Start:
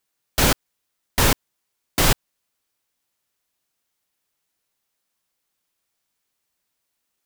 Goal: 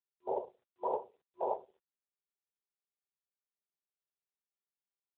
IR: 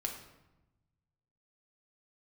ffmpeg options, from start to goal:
-filter_complex "[0:a]atempo=1.4,asplit=2[a][b];[1:a]atrim=start_sample=2205,afade=t=out:st=0.27:d=0.01,atrim=end_sample=12348,adelay=37[c];[b][c]afir=irnorm=-1:irlink=0,volume=-13dB[d];[a][d]amix=inputs=2:normalize=0,aeval=exprs='(mod(3.76*val(0)+1,2)-1)/3.76':c=same,anlmdn=6.31,aeval=exprs='sgn(val(0))*max(abs(val(0))-0.00178,0)':c=same,afftfilt=real='re*between(b*sr/4096,360,1000)':imag='im*between(b*sr/4096,360,1000)':win_size=4096:overlap=0.75,volume=-2dB" -ar 8000 -c:a libopencore_amrnb -b:a 7950

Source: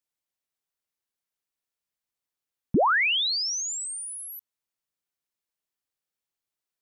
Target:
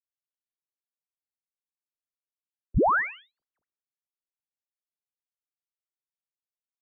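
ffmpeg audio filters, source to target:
-filter_complex "[0:a]asettb=1/sr,asplit=3[a][b][c];[a]atrim=end=3.314[d];[b]atrim=start=3.31:end=3.81,asetpts=PTS-STARTPTS,afade=t=in:d=0.004:c=qsin,afade=t=out:st=0.496:d=0.004:c=qsin,aeval=exprs='0.0708*sin(PI/2*3.55*val(0)/0.0708)':c=same[e];[c]atrim=start=3.806[f];[d][e]acrossfade=d=0.004:c1=hsin:c2=qsin[g];[g][f]acrossfade=d=0.004:c1=qsin:c2=hsin,asplit=2[h][i];[i]aecho=0:1:109|218:0.0708|0.017[j];[h][j]amix=inputs=2:normalize=0,highpass=f=240:t=q:w=0.5412,highpass=f=240:t=q:w=1.307,lowpass=f=2k:t=q:w=0.5176,lowpass=f=2k:t=q:w=0.7071,lowpass=f=2k:t=q:w=1.932,afreqshift=-230,afftdn=nr=23:nf=-47"

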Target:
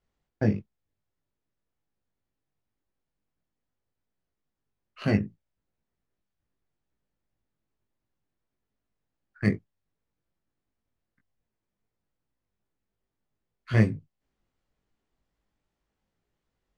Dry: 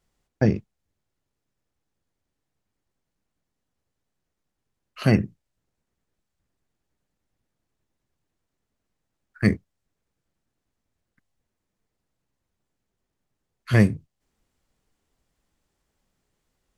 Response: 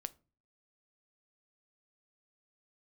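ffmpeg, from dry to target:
-af "adynamicsmooth=sensitivity=2.5:basefreq=5.5k,flanger=delay=18:depth=2.3:speed=2.6,volume=-2dB"

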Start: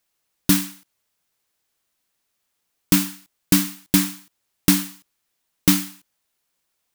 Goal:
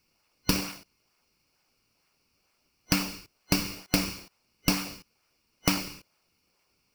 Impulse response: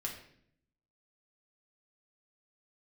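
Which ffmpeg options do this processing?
-filter_complex "[0:a]superequalizer=9b=2:10b=2.51:12b=3.98:14b=3.98,asplit=2[a][b];[b]acrusher=samples=36:mix=1:aa=0.000001:lfo=1:lforange=57.6:lforate=2.2,volume=-4dB[c];[a][c]amix=inputs=2:normalize=0,acompressor=threshold=-18dB:ratio=6,volume=-4dB"

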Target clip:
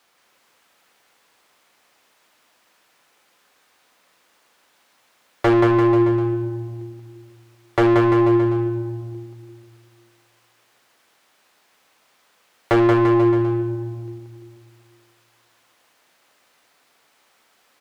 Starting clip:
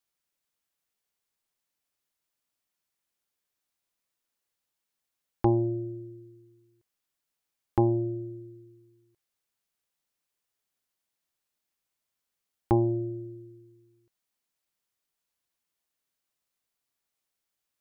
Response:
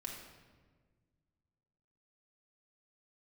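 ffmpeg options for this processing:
-filter_complex "[0:a]asplit=2[a][b];[1:a]atrim=start_sample=2205[c];[b][c]afir=irnorm=-1:irlink=0,volume=-9dB[d];[a][d]amix=inputs=2:normalize=0,aeval=exprs='0.119*(abs(mod(val(0)/0.119+3,4)-2)-1)':c=same,asplit=2[e][f];[f]highpass=f=720:p=1,volume=29dB,asoftclip=type=tanh:threshold=-18dB[g];[e][g]amix=inputs=2:normalize=0,lowpass=f=1.3k:p=1,volume=-6dB,aecho=1:1:180|342|487.8|619|737.1:0.631|0.398|0.251|0.158|0.1,volume=8.5dB"

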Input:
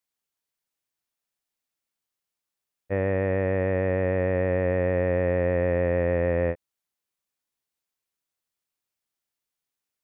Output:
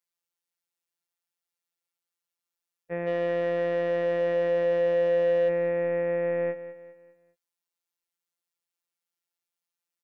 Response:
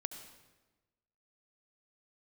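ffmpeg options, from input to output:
-filter_complex "[0:a]highpass=73,lowshelf=f=270:g=-5.5,asplit=3[a][b][c];[a]afade=t=out:st=3.06:d=0.02[d];[b]asplit=2[e][f];[f]highpass=f=720:p=1,volume=19dB,asoftclip=type=tanh:threshold=-13dB[g];[e][g]amix=inputs=2:normalize=0,lowpass=f=1.1k:p=1,volume=-6dB,afade=t=in:st=3.06:d=0.02,afade=t=out:st=5.48:d=0.02[h];[c]afade=t=in:st=5.48:d=0.02[i];[d][h][i]amix=inputs=3:normalize=0,afftfilt=real='hypot(re,im)*cos(PI*b)':imag='0':win_size=1024:overlap=0.75,aecho=1:1:201|402|603|804:0.211|0.0867|0.0355|0.0146"

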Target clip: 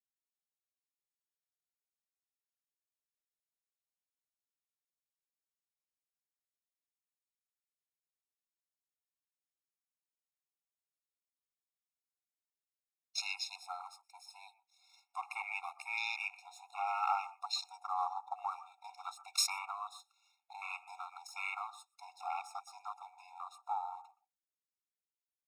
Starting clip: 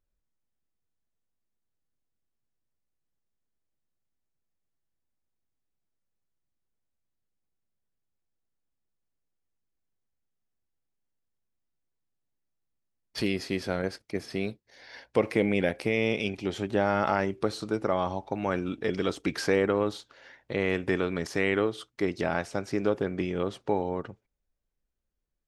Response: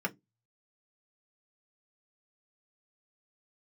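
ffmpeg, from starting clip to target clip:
-filter_complex "[0:a]aeval=exprs='if(lt(val(0),0),0.447*val(0),val(0))':c=same,equalizer=f=125:t=o:w=1:g=10,equalizer=f=250:t=o:w=1:g=-4,equalizer=f=500:t=o:w=1:g=-5,equalizer=f=1k:t=o:w=1:g=-9,equalizer=f=2k:t=o:w=1:g=-10,equalizer=f=8k:t=o:w=1:g=5,afwtdn=0.00562,asplit=2[a][b];[b]equalizer=f=4.2k:w=0.69:g=-11.5[c];[1:a]atrim=start_sample=2205,adelay=121[d];[c][d]afir=irnorm=-1:irlink=0,volume=-19dB[e];[a][e]amix=inputs=2:normalize=0,afftfilt=real='re*eq(mod(floor(b*sr/1024/710),2),1)':imag='im*eq(mod(floor(b*sr/1024/710),2),1)':win_size=1024:overlap=0.75,volume=10.5dB"

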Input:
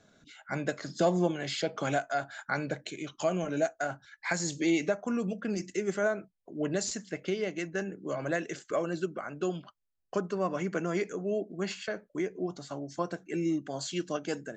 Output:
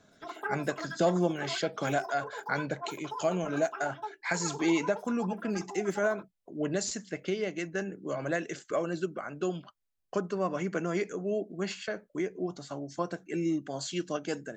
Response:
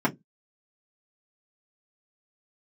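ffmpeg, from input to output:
-filter_complex "[0:a]asplit=2[a][b];[b]asetrate=103194,aresample=44100[c];[1:a]atrim=start_sample=2205[d];[c][d]afir=irnorm=-1:irlink=0,volume=-23dB[e];[a][e]amix=inputs=2:normalize=0"

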